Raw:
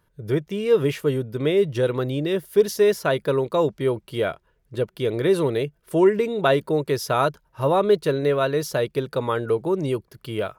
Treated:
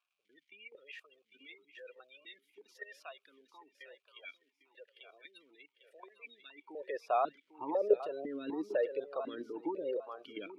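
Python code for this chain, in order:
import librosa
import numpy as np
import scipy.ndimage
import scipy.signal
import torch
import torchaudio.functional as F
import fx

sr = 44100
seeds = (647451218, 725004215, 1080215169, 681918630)

p1 = fx.spec_gate(x, sr, threshold_db=-25, keep='strong')
p2 = fx.level_steps(p1, sr, step_db=14)
p3 = fx.dmg_crackle(p2, sr, seeds[0], per_s=520.0, level_db=-57.0)
p4 = fx.filter_sweep_highpass(p3, sr, from_hz=2100.0, to_hz=370.0, start_s=6.49, end_s=7.04, q=0.72)
p5 = p4 + fx.echo_feedback(p4, sr, ms=800, feedback_pct=28, wet_db=-11.5, dry=0)
p6 = fx.vowel_held(p5, sr, hz=4.0)
y = p6 * 10.0 ** (6.5 / 20.0)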